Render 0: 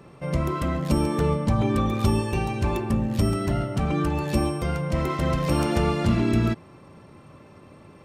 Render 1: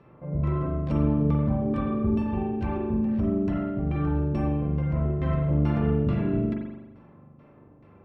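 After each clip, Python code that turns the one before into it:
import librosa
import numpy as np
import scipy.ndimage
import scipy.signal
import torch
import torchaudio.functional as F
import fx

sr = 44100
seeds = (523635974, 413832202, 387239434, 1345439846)

y = fx.filter_lfo_lowpass(x, sr, shape='saw_down', hz=2.3, low_hz=280.0, high_hz=3000.0, q=0.75)
y = fx.rev_spring(y, sr, rt60_s=1.0, pass_ms=(41,), chirp_ms=70, drr_db=-0.5)
y = y * librosa.db_to_amplitude(-7.0)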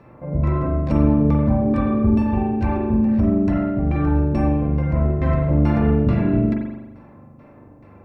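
y = fx.graphic_eq_31(x, sr, hz=(160, 400, 1250, 3150), db=(-8, -6, -4, -9))
y = y * librosa.db_to_amplitude(9.0)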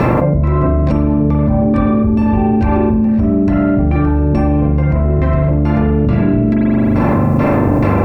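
y = fx.env_flatten(x, sr, amount_pct=100)
y = y * librosa.db_to_amplitude(1.0)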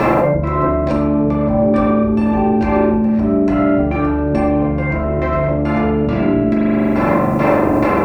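y = fx.bass_treble(x, sr, bass_db=-10, treble_db=1)
y = fx.rev_gated(y, sr, seeds[0], gate_ms=170, shape='falling', drr_db=1.5)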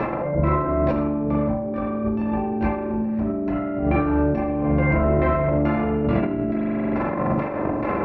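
y = scipy.signal.sosfilt(scipy.signal.butter(2, 2800.0, 'lowpass', fs=sr, output='sos'), x)
y = fx.over_compress(y, sr, threshold_db=-17.0, ratio=-0.5)
y = y * librosa.db_to_amplitude(-4.0)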